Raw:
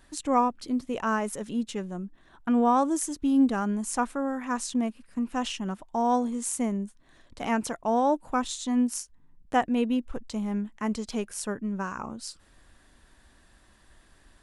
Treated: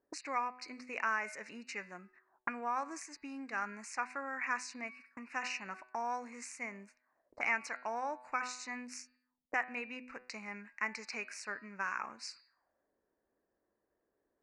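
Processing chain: gate -47 dBFS, range -20 dB; treble shelf 2.7 kHz +11.5 dB; de-hum 125.3 Hz, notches 39; compression 3:1, threshold -27 dBFS, peak gain reduction 8.5 dB; auto-wah 440–2400 Hz, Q 3.1, up, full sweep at -36 dBFS; Butterworth band-stop 3.3 kHz, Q 1.3; distance through air 110 m; trim +11 dB

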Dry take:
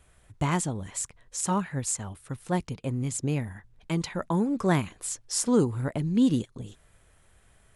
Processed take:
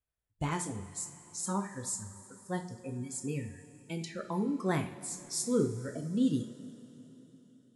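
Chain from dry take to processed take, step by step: spectral noise reduction 26 dB; vibrato 4.9 Hz 28 cents; two-slope reverb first 0.4 s, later 4 s, from -18 dB, DRR 3.5 dB; trim -7.5 dB

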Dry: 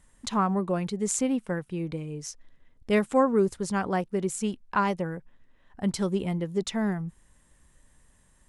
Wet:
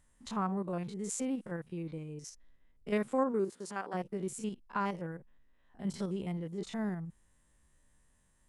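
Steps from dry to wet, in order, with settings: spectrogram pixelated in time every 50 ms; 3.31–3.93 s: high-pass 180 Hz -> 460 Hz 12 dB/octave; trim -7.5 dB

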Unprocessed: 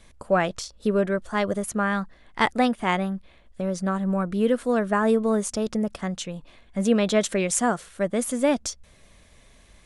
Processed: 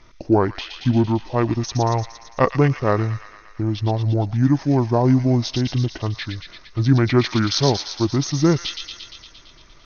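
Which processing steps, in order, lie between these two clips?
treble shelf 5.6 kHz -2.5 dB; feedback echo behind a high-pass 114 ms, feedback 71%, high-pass 3.9 kHz, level -3.5 dB; pitch shift -9.5 st; trim +5 dB

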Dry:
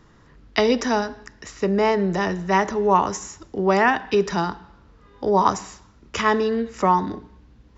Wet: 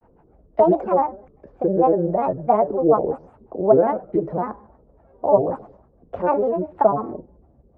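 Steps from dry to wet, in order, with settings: resonant low-pass 610 Hz, resonance Q 6.6; granulator, spray 19 ms, pitch spread up and down by 7 st; trim -3.5 dB

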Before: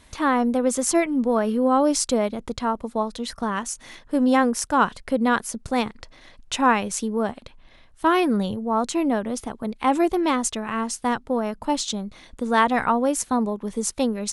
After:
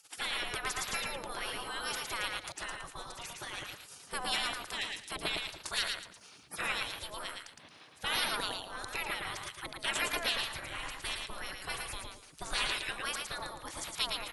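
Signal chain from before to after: spectral gate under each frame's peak -25 dB weak; 10.51–12.58 s: bass shelf 69 Hz +10 dB; on a send: feedback delay 112 ms, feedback 22%, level -4 dB; on the sum: trim +5.5 dB

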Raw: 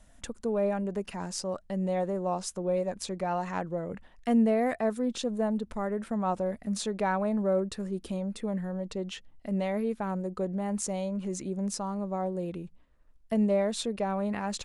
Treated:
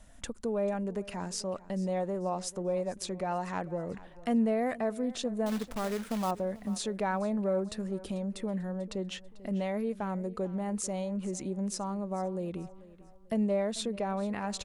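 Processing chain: in parallel at +2 dB: compression, threshold -39 dBFS, peak gain reduction 17.5 dB; 5.46–6.31 s: on the sum: companded quantiser 4-bit; feedback delay 442 ms, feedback 37%, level -19 dB; trim -5 dB

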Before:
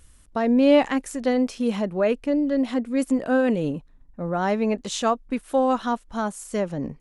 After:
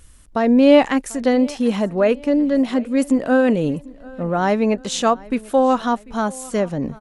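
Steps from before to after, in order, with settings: feedback delay 743 ms, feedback 45%, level -22.5 dB; trim +5 dB

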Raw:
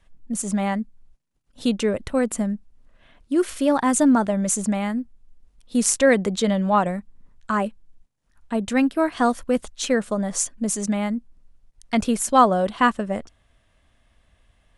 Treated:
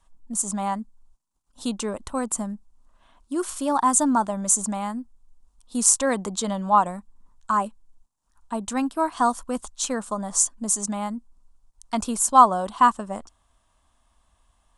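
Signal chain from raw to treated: graphic EQ 125/500/1000/2000/8000 Hz -8/-7/+12/-10/+9 dB; trim -3.5 dB

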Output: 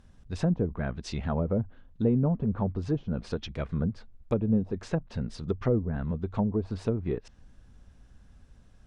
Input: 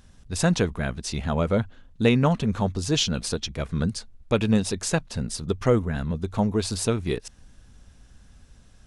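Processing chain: in parallel at -11.5 dB: saturation -19.5 dBFS, distortion -11 dB; on the sum: low-pass that closes with the level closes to 490 Hz, closed at -17 dBFS; tape noise reduction on one side only decoder only; trim -5 dB

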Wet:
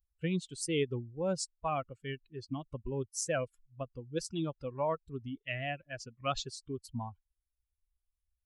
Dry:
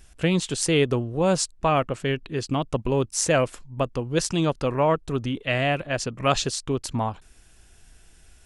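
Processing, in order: expander on every frequency bin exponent 2; trim -8.5 dB

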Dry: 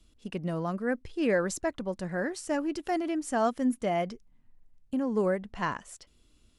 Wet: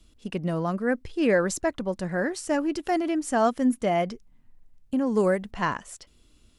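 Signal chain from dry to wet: 5.06–5.51 s: treble shelf 3.9 kHz +9 dB; trim +4.5 dB

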